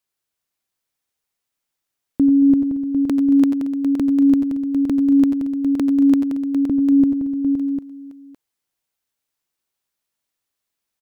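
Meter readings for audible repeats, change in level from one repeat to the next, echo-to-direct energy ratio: 5, no steady repeat, -3.0 dB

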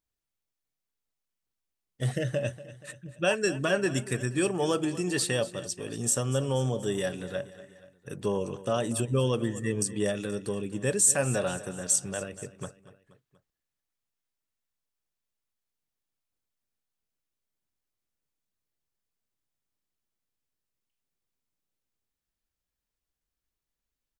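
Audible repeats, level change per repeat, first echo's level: 3, -5.0 dB, -16.5 dB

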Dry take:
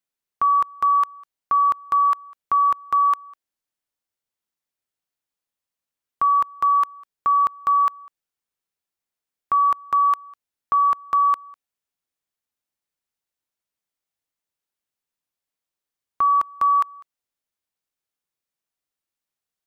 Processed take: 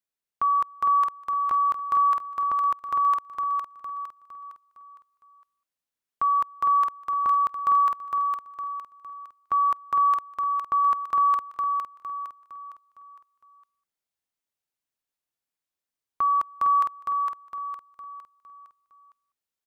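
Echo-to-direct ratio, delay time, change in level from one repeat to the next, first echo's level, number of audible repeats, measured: -3.0 dB, 0.459 s, -7.5 dB, -4.0 dB, 5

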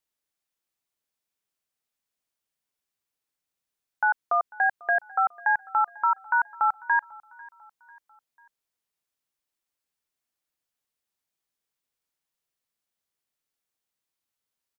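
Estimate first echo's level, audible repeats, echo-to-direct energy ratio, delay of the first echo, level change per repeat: -23.0 dB, 2, -22.0 dB, 0.495 s, -6.5 dB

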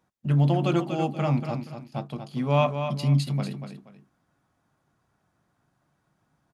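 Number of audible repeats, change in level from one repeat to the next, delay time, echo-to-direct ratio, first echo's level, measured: 2, -10.5 dB, 0.238 s, -7.5 dB, -8.0 dB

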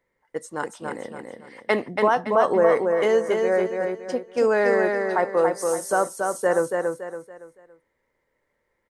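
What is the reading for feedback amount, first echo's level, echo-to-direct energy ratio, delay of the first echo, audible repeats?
35%, -4.0 dB, -3.5 dB, 0.282 s, 4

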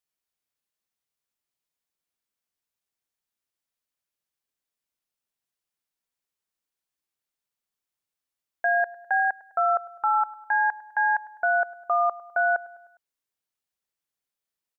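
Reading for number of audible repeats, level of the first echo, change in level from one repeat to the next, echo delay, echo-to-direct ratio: 3, -20.0 dB, -5.5 dB, 0.102 s, -18.5 dB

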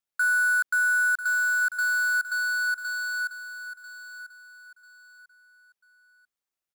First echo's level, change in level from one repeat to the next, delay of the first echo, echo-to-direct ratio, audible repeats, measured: -12.0 dB, -11.0 dB, 0.993 s, -11.5 dB, 3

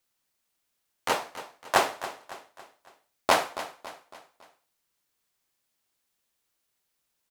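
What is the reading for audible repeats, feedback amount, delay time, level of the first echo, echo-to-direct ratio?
4, 46%, 0.278 s, -14.0 dB, -13.0 dB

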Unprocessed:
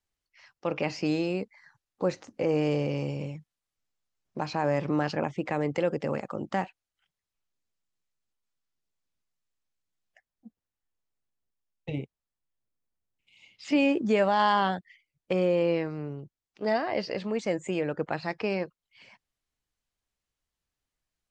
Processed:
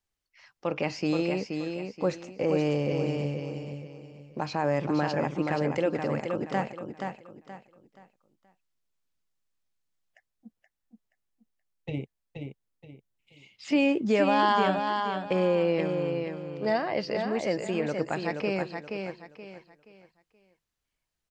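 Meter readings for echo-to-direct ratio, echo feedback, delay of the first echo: -5.0 dB, 31%, 0.476 s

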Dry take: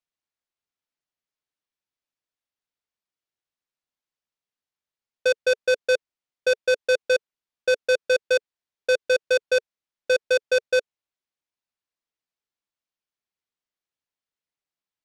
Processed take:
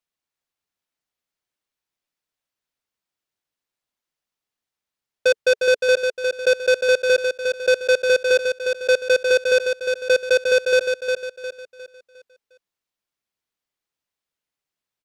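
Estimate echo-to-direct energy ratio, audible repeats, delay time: -5.0 dB, 4, 0.356 s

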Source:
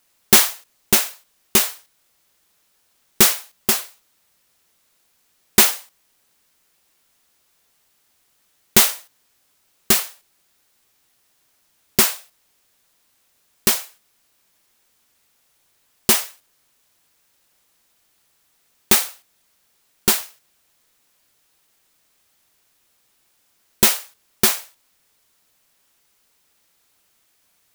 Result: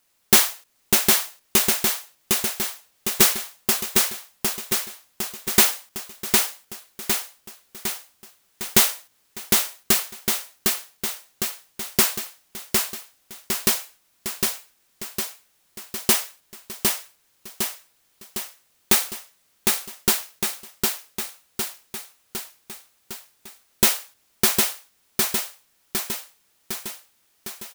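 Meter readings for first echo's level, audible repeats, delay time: -3.0 dB, 6, 0.757 s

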